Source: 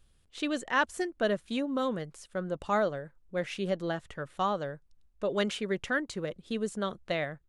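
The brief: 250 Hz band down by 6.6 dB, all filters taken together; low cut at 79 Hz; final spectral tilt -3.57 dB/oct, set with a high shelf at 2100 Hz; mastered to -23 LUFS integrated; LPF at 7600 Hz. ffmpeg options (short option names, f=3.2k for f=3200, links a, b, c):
-af "highpass=79,lowpass=7.6k,equalizer=f=250:t=o:g=-9,highshelf=f=2.1k:g=4,volume=10.5dB"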